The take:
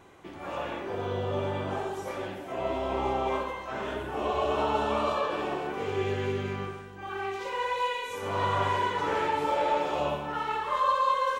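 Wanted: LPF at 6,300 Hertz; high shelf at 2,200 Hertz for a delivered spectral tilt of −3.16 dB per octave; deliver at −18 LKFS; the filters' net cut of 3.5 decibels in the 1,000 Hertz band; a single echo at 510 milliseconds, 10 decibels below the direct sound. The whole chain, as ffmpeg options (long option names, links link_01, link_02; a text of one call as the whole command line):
ffmpeg -i in.wav -af "lowpass=6300,equalizer=frequency=1000:width_type=o:gain=-5,highshelf=frequency=2200:gain=5.5,aecho=1:1:510:0.316,volume=13dB" out.wav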